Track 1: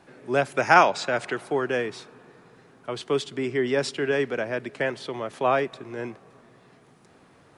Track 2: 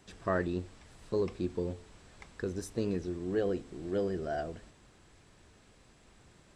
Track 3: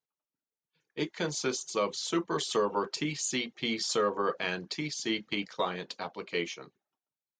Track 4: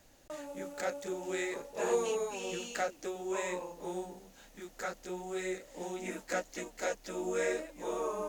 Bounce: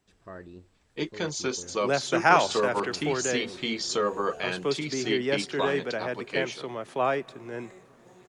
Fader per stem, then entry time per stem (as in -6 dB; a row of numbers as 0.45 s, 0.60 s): -3.5 dB, -12.5 dB, +1.5 dB, -16.0 dB; 1.55 s, 0.00 s, 0.00 s, 2.25 s